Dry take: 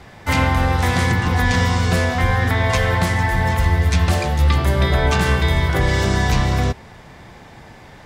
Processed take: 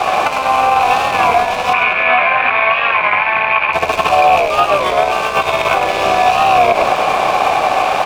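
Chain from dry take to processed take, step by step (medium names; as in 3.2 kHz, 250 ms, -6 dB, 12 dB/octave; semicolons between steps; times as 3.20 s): rattle on loud lows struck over -18 dBFS, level -20 dBFS; bass shelf 450 Hz -8.5 dB; band-stop 700 Hz, Q 12; compressor with a negative ratio -29 dBFS, ratio -0.5; vowel filter a; crossover distortion -58.5 dBFS; 1.73–3.73 s: cabinet simulation 150–3100 Hz, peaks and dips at 200 Hz -4 dB, 300 Hz -9 dB, 500 Hz -10 dB, 730 Hz -8 dB, 1.6 kHz +5 dB, 2.3 kHz +10 dB; frequency-shifting echo 100 ms, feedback 51%, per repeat -60 Hz, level -11 dB; loudness maximiser +36 dB; warped record 33 1/3 rpm, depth 100 cents; trim -1 dB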